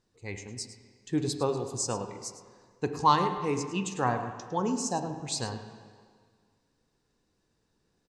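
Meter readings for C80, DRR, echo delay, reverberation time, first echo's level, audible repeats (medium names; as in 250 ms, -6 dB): 8.5 dB, 6.0 dB, 106 ms, 1.8 s, -14.0 dB, 1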